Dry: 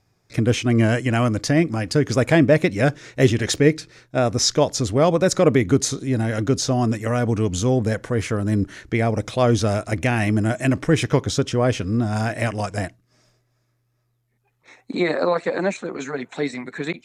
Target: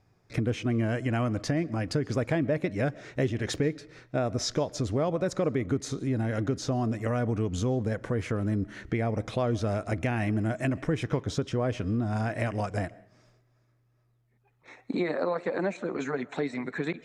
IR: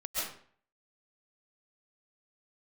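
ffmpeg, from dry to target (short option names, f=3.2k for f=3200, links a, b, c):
-filter_complex "[0:a]highshelf=f=3.6k:g=-10.5,acompressor=threshold=-28dB:ratio=3,asplit=2[a][b];[1:a]atrim=start_sample=2205,highshelf=f=5.7k:g=-9[c];[b][c]afir=irnorm=-1:irlink=0,volume=-25dB[d];[a][d]amix=inputs=2:normalize=0"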